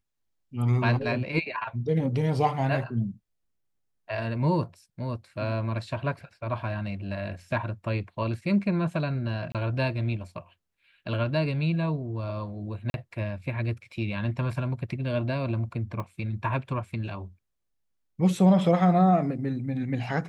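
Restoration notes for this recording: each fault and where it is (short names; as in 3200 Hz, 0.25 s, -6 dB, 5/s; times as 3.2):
9.52–9.55 gap 27 ms
12.9–12.94 gap 41 ms
16 pop -22 dBFS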